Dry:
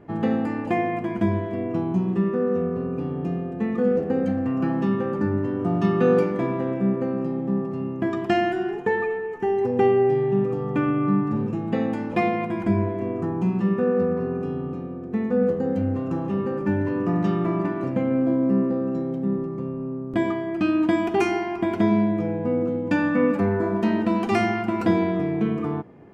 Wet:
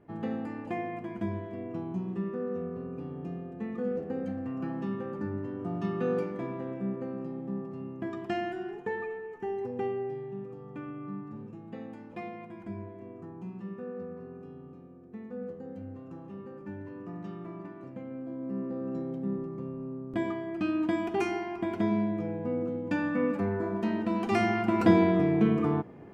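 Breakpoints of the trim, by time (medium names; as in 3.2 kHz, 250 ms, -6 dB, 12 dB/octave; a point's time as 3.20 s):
9.51 s -11 dB
10.37 s -18 dB
18.28 s -18 dB
18.95 s -8 dB
24.05 s -8 dB
24.85 s -0.5 dB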